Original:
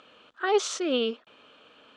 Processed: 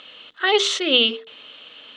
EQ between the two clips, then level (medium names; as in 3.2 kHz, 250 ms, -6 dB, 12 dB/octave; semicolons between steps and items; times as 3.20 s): high-order bell 2.8 kHz +12.5 dB 1.3 oct; hum notches 50/100/150/200/250/300/350/400/450 Hz; band-stop 2.4 kHz, Q 7.8; +4.5 dB